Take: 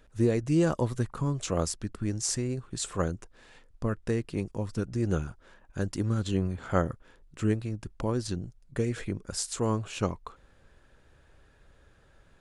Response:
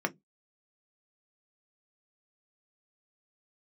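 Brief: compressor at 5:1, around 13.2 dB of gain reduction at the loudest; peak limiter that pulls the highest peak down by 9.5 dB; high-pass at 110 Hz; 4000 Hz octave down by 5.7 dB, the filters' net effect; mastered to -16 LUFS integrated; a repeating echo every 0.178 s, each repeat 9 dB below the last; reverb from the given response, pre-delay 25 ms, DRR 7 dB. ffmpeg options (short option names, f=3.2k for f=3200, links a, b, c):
-filter_complex "[0:a]highpass=110,equalizer=f=4k:t=o:g=-8,acompressor=threshold=-35dB:ratio=5,alimiter=level_in=7.5dB:limit=-24dB:level=0:latency=1,volume=-7.5dB,aecho=1:1:178|356|534|712:0.355|0.124|0.0435|0.0152,asplit=2[a][b];[1:a]atrim=start_sample=2205,adelay=25[c];[b][c]afir=irnorm=-1:irlink=0,volume=-14.5dB[d];[a][d]amix=inputs=2:normalize=0,volume=26dB"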